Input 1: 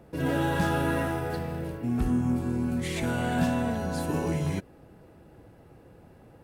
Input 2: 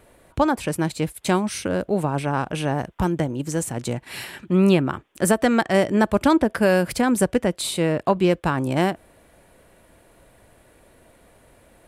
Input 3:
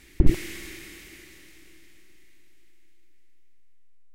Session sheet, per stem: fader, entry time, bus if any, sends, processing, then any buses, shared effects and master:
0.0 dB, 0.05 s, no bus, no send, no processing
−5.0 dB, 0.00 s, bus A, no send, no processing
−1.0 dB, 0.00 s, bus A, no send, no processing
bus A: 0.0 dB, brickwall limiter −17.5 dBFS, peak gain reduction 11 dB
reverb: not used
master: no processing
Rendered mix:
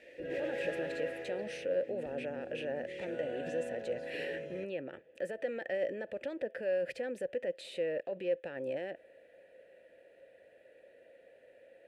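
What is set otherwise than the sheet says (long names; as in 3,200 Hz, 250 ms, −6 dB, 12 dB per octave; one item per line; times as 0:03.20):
stem 2 −5.0 dB → +4.0 dB
stem 3 −1.0 dB → +8.0 dB
master: extra formant filter e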